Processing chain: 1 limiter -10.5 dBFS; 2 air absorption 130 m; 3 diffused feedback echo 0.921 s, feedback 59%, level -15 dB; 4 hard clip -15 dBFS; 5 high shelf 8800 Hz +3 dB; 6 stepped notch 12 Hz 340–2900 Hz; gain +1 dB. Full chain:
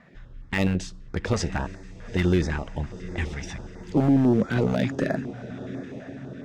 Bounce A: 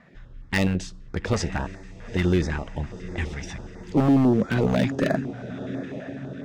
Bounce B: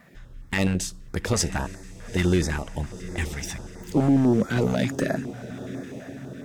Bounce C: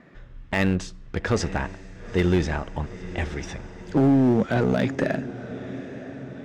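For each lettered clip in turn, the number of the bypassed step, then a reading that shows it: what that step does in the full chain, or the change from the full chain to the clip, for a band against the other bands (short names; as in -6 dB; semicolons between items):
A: 1, crest factor change +2.0 dB; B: 2, 8 kHz band +9.5 dB; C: 6, 1 kHz band +2.5 dB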